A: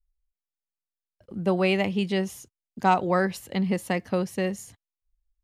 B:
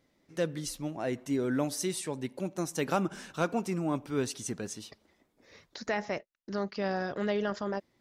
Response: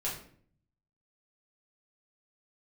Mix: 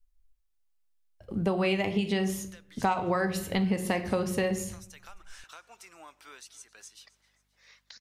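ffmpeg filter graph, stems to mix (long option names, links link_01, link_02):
-filter_complex "[0:a]asubboost=boost=5:cutoff=91,volume=2dB,asplit=3[link_01][link_02][link_03];[link_02]volume=-7.5dB[link_04];[1:a]highpass=1300,acompressor=threshold=-46dB:ratio=16,aeval=exprs='val(0)+0.000158*(sin(2*PI*50*n/s)+sin(2*PI*2*50*n/s)/2+sin(2*PI*3*50*n/s)/3+sin(2*PI*4*50*n/s)/4+sin(2*PI*5*50*n/s)/5)':channel_layout=same,adelay=2150,volume=0.5dB,asplit=2[link_05][link_06];[link_06]volume=-21.5dB[link_07];[link_03]apad=whole_len=447913[link_08];[link_05][link_08]sidechaincompress=threshold=-25dB:ratio=8:attack=16:release=1350[link_09];[2:a]atrim=start_sample=2205[link_10];[link_04][link_10]afir=irnorm=-1:irlink=0[link_11];[link_07]aecho=0:1:266|532|798|1064|1330|1596|1862:1|0.47|0.221|0.104|0.0488|0.0229|0.0108[link_12];[link_01][link_09][link_11][link_12]amix=inputs=4:normalize=0,acompressor=threshold=-24dB:ratio=5"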